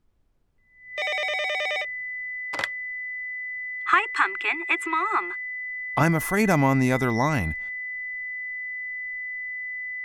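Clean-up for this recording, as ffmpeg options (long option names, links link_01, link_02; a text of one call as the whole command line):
ffmpeg -i in.wav -af "bandreject=frequency=2000:width=30,agate=range=-21dB:threshold=-25dB" out.wav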